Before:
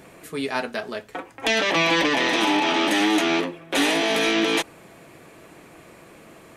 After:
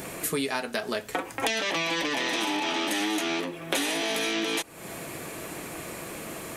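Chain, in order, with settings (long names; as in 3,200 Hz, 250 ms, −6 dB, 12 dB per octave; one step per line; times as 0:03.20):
high-shelf EQ 5,900 Hz +11.5 dB
downward compressor 12 to 1, threshold −33 dBFS, peak gain reduction 18 dB
level +8 dB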